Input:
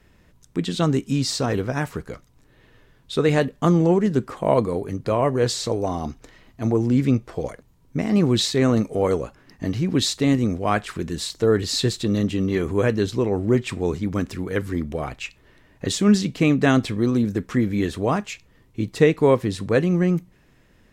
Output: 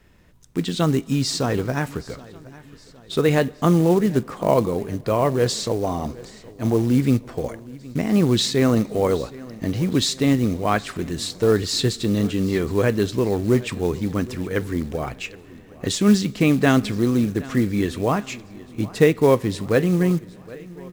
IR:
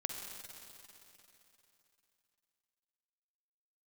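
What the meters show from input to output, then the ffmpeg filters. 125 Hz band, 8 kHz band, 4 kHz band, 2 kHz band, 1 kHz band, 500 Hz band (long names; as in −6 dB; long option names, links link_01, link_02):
+0.5 dB, +1.0 dB, +1.0 dB, +1.0 dB, +1.0 dB, +1.0 dB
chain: -filter_complex "[0:a]aecho=1:1:768|1536|2304|3072:0.0944|0.0481|0.0246|0.0125,asplit=2[link_01][link_02];[1:a]atrim=start_sample=2205[link_03];[link_02][link_03]afir=irnorm=-1:irlink=0,volume=-20.5dB[link_04];[link_01][link_04]amix=inputs=2:normalize=0,acrusher=bits=6:mode=log:mix=0:aa=0.000001"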